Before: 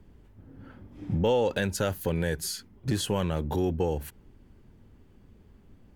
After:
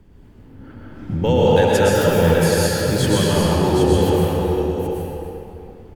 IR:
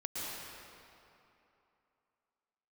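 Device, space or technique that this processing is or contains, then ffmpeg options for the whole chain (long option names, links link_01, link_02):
cave: -filter_complex "[0:a]aecho=1:1:279:0.237,aecho=1:1:774:0.473[link_01];[1:a]atrim=start_sample=2205[link_02];[link_01][link_02]afir=irnorm=-1:irlink=0,volume=8.5dB"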